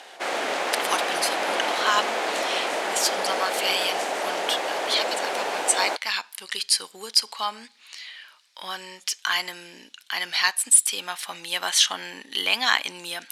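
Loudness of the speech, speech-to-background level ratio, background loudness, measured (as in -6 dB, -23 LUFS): -24.5 LUFS, 2.0 dB, -26.5 LUFS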